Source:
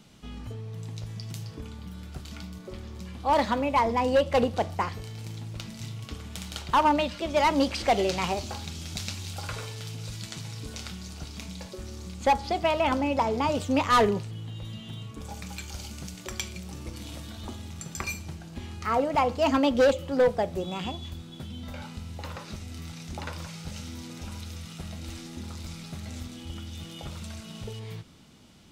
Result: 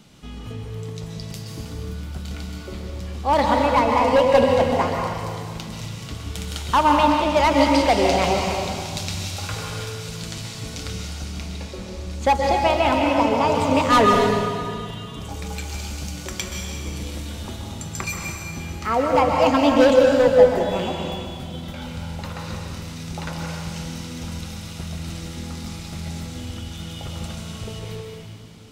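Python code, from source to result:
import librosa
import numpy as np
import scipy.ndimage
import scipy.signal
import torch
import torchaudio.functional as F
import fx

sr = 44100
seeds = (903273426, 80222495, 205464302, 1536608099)

y = fx.high_shelf(x, sr, hz=6400.0, db=-8.5, at=(11.25, 12.11))
y = fx.rev_plate(y, sr, seeds[0], rt60_s=2.1, hf_ratio=0.95, predelay_ms=115, drr_db=0.0)
y = y * librosa.db_to_amplitude(4.0)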